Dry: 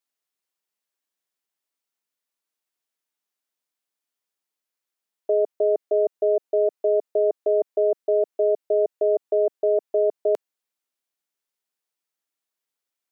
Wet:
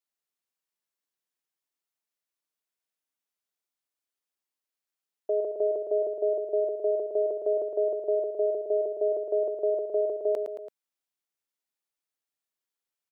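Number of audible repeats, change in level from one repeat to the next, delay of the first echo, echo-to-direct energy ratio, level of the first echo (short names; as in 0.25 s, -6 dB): 3, -4.5 dB, 0.111 s, -4.5 dB, -6.0 dB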